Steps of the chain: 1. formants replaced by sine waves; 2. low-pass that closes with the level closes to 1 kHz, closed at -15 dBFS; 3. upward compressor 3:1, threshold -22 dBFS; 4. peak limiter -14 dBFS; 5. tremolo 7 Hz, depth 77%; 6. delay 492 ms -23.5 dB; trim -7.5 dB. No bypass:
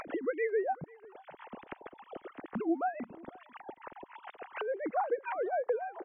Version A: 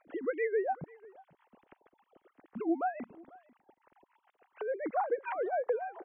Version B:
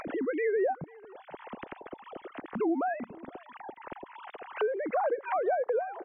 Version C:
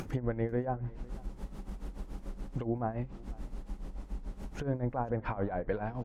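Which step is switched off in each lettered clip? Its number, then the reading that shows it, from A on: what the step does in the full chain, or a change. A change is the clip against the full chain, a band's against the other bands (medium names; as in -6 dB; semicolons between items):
3, momentary loudness spread change -4 LU; 5, crest factor change -3.0 dB; 1, 125 Hz band +23.5 dB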